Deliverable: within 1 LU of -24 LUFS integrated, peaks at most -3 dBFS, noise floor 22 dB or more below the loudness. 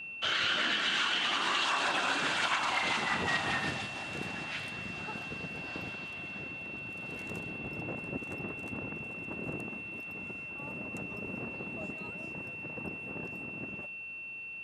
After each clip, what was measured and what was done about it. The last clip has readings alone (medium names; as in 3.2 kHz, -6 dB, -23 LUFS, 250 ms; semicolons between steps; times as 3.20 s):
steady tone 2.7 kHz; tone level -40 dBFS; loudness -34.0 LUFS; peak level -17.5 dBFS; loudness target -24.0 LUFS
-> band-stop 2.7 kHz, Q 30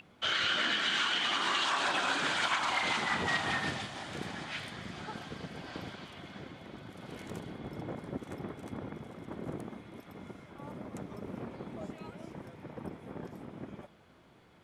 steady tone not found; loudness -33.5 LUFS; peak level -18.0 dBFS; loudness target -24.0 LUFS
-> trim +9.5 dB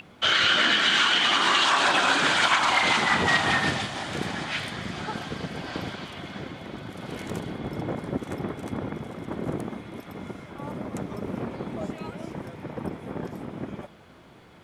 loudness -24.0 LUFS; peak level -8.5 dBFS; noise floor -51 dBFS